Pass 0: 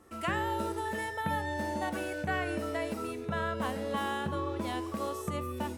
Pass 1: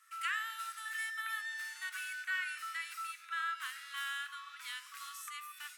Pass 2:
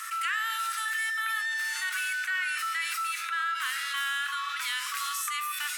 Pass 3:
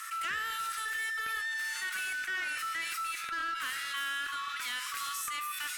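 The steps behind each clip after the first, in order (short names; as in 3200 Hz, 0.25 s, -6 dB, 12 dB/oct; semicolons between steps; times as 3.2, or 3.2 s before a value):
Chebyshev high-pass 1300 Hz, order 5; gain +1 dB
in parallel at -11.5 dB: soft clip -38.5 dBFS, distortion -10 dB; on the sum: fast leveller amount 70%; gain +4 dB
one-sided clip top -28 dBFS; gain -4 dB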